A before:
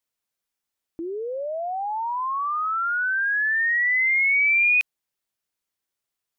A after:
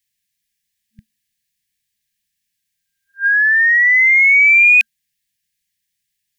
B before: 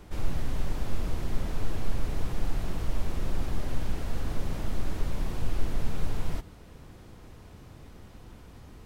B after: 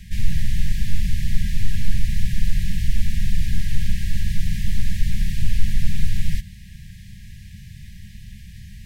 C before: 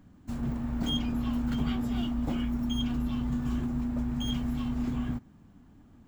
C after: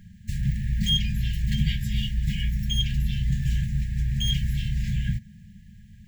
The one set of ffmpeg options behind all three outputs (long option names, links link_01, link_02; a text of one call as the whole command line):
ffmpeg -i in.wav -af "afftfilt=real='re*(1-between(b*sr/4096,220,1600))':imag='im*(1-between(b*sr/4096,220,1600))':win_size=4096:overlap=0.75,acontrast=34,volume=4.5dB" out.wav